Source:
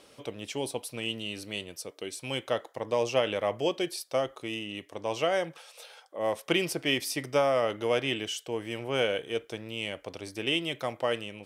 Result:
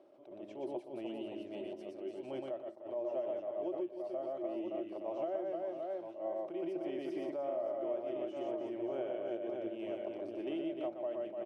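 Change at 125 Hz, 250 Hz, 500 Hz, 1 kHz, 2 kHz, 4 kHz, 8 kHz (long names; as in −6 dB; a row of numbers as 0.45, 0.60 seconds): −20.0 dB, −4.5 dB, −7.0 dB, −11.5 dB, −23.5 dB, below −25 dB, below −30 dB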